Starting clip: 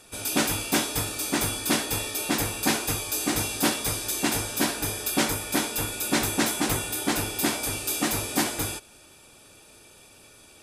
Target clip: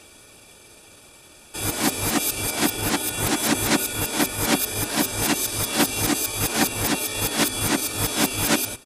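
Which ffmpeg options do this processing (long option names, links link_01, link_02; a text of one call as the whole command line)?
ffmpeg -i in.wav -af "areverse,bandreject=frequency=128.4:width_type=h:width=4,bandreject=frequency=256.8:width_type=h:width=4,bandreject=frequency=385.2:width_type=h:width=4,atempo=1.2,volume=4dB" out.wav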